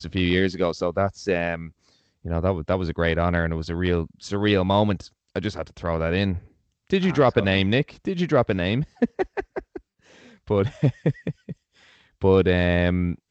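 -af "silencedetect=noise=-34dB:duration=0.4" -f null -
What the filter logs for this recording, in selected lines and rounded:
silence_start: 1.69
silence_end: 2.25 | silence_duration: 0.56
silence_start: 6.39
silence_end: 6.90 | silence_duration: 0.52
silence_start: 9.77
silence_end: 10.48 | silence_duration: 0.71
silence_start: 11.52
silence_end: 12.22 | silence_duration: 0.69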